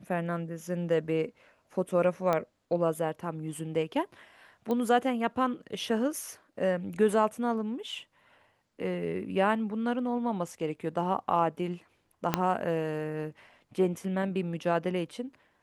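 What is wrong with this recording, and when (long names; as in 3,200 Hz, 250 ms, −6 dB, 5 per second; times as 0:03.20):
0:02.33: click −15 dBFS
0:04.71: click −20 dBFS
0:12.34: click −9 dBFS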